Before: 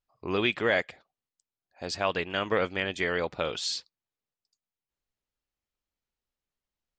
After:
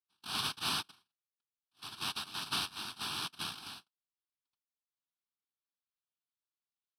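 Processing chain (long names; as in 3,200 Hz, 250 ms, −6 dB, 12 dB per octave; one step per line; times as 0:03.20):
high-shelf EQ 3,900 Hz −11.5 dB
cochlear-implant simulation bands 1
phaser with its sweep stopped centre 2,000 Hz, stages 6
level −5 dB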